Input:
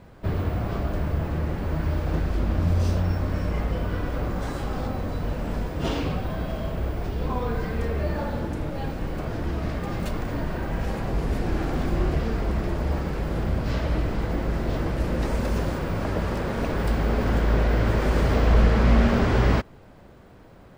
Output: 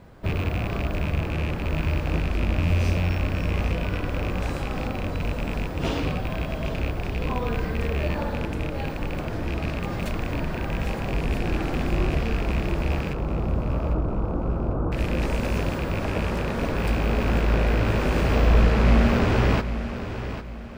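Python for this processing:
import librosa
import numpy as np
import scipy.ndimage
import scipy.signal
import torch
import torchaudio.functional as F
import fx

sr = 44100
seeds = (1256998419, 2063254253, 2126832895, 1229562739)

p1 = fx.rattle_buzz(x, sr, strikes_db=-25.0, level_db=-22.0)
p2 = fx.steep_lowpass(p1, sr, hz=1400.0, slope=72, at=(13.13, 14.92))
y = p2 + fx.echo_feedback(p2, sr, ms=799, feedback_pct=36, wet_db=-11, dry=0)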